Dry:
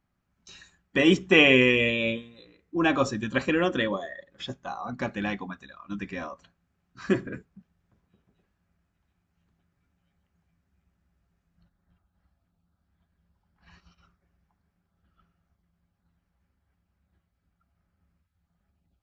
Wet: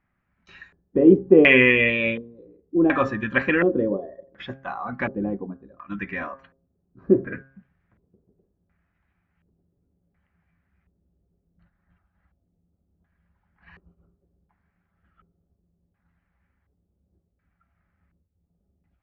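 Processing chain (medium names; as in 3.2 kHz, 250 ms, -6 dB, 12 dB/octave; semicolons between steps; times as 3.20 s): de-hum 134.6 Hz, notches 13; LFO low-pass square 0.69 Hz 440–2000 Hz; trim +2 dB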